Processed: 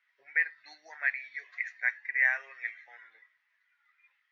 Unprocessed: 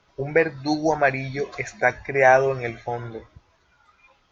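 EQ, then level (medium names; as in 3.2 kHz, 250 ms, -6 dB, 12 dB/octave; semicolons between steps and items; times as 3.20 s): ladder band-pass 2 kHz, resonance 80%; -2.0 dB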